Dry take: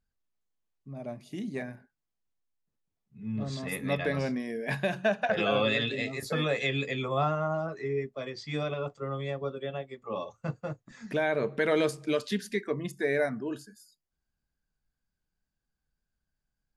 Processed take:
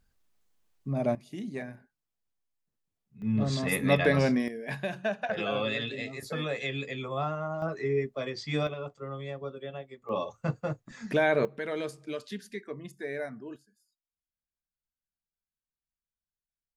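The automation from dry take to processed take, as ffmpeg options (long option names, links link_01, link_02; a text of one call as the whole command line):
ffmpeg -i in.wav -af "asetnsamples=nb_out_samples=441:pad=0,asendcmd='1.15 volume volume -1.5dB;3.22 volume volume 6dB;4.48 volume volume -4dB;7.62 volume volume 3dB;8.67 volume volume -4dB;10.09 volume volume 3.5dB;11.45 volume volume -8dB;13.56 volume volume -17dB',volume=11dB" out.wav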